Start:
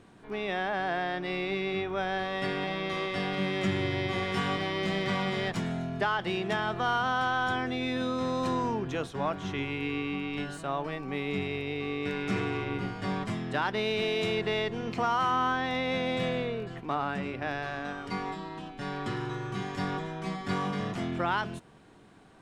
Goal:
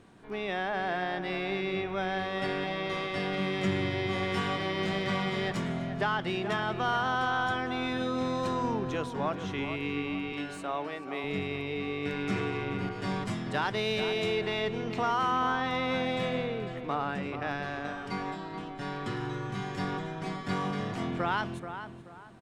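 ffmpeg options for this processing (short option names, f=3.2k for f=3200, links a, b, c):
-filter_complex "[0:a]asettb=1/sr,asplit=3[a][b][c];[a]atrim=end=10.324[d];[b]atrim=start=10.32:end=11.24,asetpts=PTS-STARTPTS,afade=t=in:d=0.004:c=qsin,afade=t=out:st=0.916:d=0.004:c=qsin,highpass=310[e];[c]atrim=start=11.236[f];[d][e]acrossfade=d=0.004:c1=hsin:c2=qsin[g];[g][f]acrossfade=d=0.004:c1=qsin:c2=hsin,asplit=2[h][i];[i]adelay=431,lowpass=f=2.1k:p=1,volume=-9dB,asplit=2[j][k];[k]adelay=431,lowpass=f=2.1k:p=1,volume=0.33,asplit=2[l][m];[m]adelay=431,lowpass=f=2.1k:p=1,volume=0.33,asplit=2[n][o];[o]adelay=431,lowpass=f=2.1k:p=1,volume=0.33[p];[j][l][n][p]amix=inputs=4:normalize=0[q];[h][q]amix=inputs=2:normalize=0,asettb=1/sr,asplit=3[r][s][t];[r]atrim=end=12.894[u];[s]atrim=start=12.89:end=14,asetpts=PTS-STARTPTS,afade=t=in:d=0.004:c=qsin,afade=t=out:st=1.106:d=0.004:c=qsin,adynamicequalizer=threshold=0.00447:dfrequency=3900:dqfactor=0.7:tfrequency=3900:tqfactor=0.7:attack=5:release=100:ratio=0.375:range=2.5:mode=boostabove:tftype=highshelf[v];[t]atrim=start=13.996[w];[u][v]acrossfade=d=0.004:c1=hsin:c2=qsin[x];[x][w]acrossfade=d=0.004:c1=qsin:c2=hsin,volume=-1dB"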